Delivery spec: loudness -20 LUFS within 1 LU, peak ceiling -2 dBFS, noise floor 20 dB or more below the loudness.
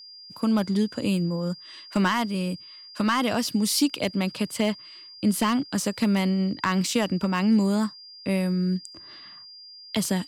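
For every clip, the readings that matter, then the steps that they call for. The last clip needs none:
clipped samples 0.3%; clipping level -14.0 dBFS; steady tone 4.8 kHz; tone level -43 dBFS; loudness -25.5 LUFS; peak level -14.0 dBFS; loudness target -20.0 LUFS
-> clip repair -14 dBFS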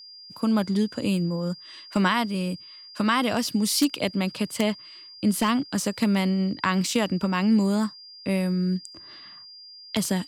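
clipped samples 0.0%; steady tone 4.8 kHz; tone level -43 dBFS
-> band-stop 4.8 kHz, Q 30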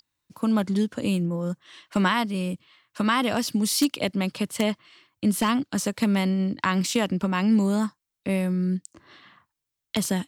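steady tone not found; loudness -25.0 LUFS; peak level -5.0 dBFS; loudness target -20.0 LUFS
-> trim +5 dB; peak limiter -2 dBFS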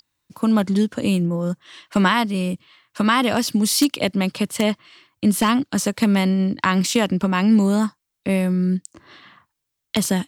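loudness -20.0 LUFS; peak level -2.0 dBFS; noise floor -79 dBFS

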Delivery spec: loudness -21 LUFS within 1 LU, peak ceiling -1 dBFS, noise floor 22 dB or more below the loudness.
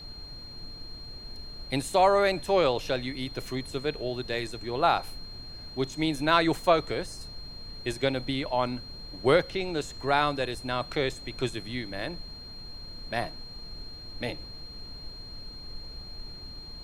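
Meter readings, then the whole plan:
steady tone 4.2 kHz; tone level -43 dBFS; noise floor -44 dBFS; noise floor target -51 dBFS; loudness -28.5 LUFS; peak level -7.5 dBFS; loudness target -21.0 LUFS
-> band-stop 4.2 kHz, Q 30; noise print and reduce 7 dB; trim +7.5 dB; peak limiter -1 dBFS

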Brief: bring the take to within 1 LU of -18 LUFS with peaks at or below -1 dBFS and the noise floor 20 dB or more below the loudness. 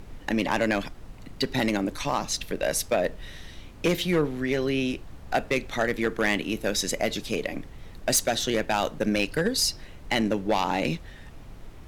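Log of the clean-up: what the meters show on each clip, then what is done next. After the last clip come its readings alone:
clipped samples 0.6%; clipping level -16.0 dBFS; noise floor -45 dBFS; noise floor target -47 dBFS; loudness -26.5 LUFS; peak level -16.0 dBFS; loudness target -18.0 LUFS
-> clip repair -16 dBFS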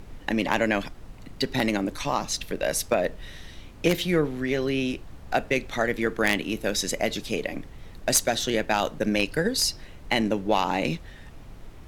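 clipped samples 0.0%; noise floor -45 dBFS; noise floor target -46 dBFS
-> noise print and reduce 6 dB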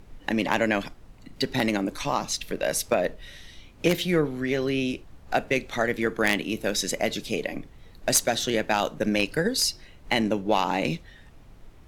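noise floor -50 dBFS; loudness -26.0 LUFS; peak level -7.0 dBFS; loudness target -18.0 LUFS
-> trim +8 dB; peak limiter -1 dBFS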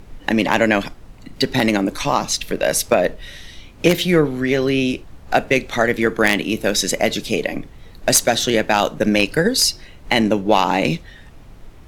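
loudness -18.0 LUFS; peak level -1.0 dBFS; noise floor -42 dBFS

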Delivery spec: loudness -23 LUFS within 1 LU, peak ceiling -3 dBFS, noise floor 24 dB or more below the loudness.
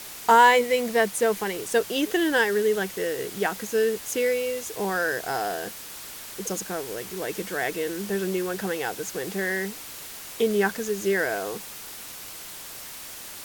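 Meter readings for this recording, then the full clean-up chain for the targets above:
noise floor -40 dBFS; noise floor target -49 dBFS; loudness -25.0 LUFS; peak level -5.5 dBFS; loudness target -23.0 LUFS
-> noise print and reduce 9 dB; trim +2 dB

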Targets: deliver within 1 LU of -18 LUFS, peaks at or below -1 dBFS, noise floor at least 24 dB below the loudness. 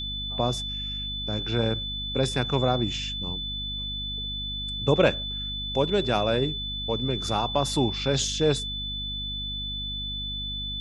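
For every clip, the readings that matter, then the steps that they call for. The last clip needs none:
hum 50 Hz; highest harmonic 250 Hz; hum level -34 dBFS; steady tone 3.5 kHz; tone level -31 dBFS; loudness -27.0 LUFS; peak level -6.0 dBFS; loudness target -18.0 LUFS
-> de-hum 50 Hz, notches 5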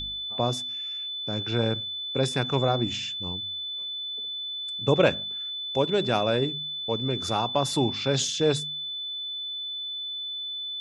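hum not found; steady tone 3.5 kHz; tone level -31 dBFS
-> band-stop 3.5 kHz, Q 30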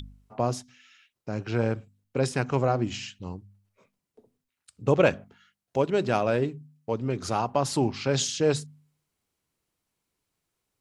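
steady tone not found; loudness -27.5 LUFS; peak level -6.5 dBFS; loudness target -18.0 LUFS
-> trim +9.5 dB; peak limiter -1 dBFS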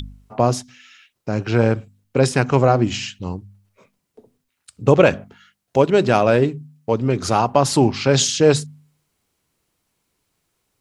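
loudness -18.0 LUFS; peak level -1.0 dBFS; noise floor -75 dBFS

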